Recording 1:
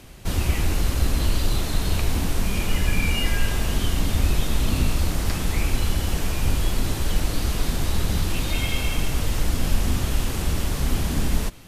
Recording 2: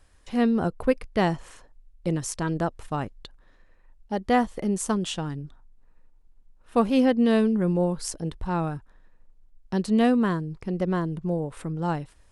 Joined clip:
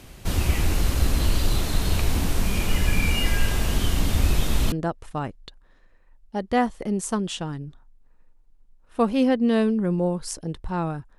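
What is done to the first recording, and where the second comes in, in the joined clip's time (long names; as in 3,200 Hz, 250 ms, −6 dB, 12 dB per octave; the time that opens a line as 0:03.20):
recording 1
0:04.72: continue with recording 2 from 0:02.49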